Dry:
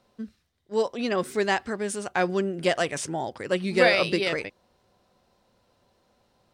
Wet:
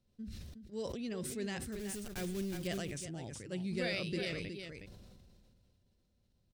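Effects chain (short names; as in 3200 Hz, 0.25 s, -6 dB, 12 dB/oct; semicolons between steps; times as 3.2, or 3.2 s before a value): 1.72–2.69 block floating point 3-bit; passive tone stack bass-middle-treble 10-0-1; echo 0.366 s -10 dB; sustainer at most 23 dB/s; gain +6.5 dB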